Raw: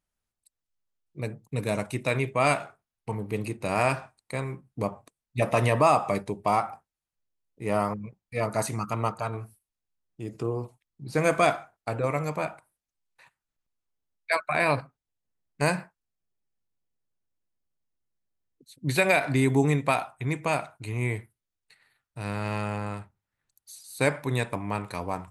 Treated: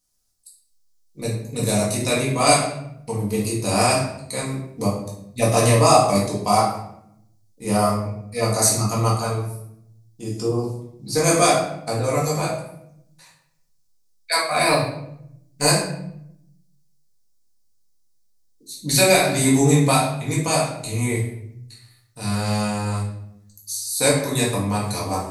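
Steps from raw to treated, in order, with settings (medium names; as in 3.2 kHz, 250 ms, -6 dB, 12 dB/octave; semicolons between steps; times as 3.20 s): resonant high shelf 3.6 kHz +13 dB, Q 1.5; 14.43–15.67 s: short-mantissa float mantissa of 4-bit; simulated room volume 170 m³, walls mixed, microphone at 1.9 m; trim -1 dB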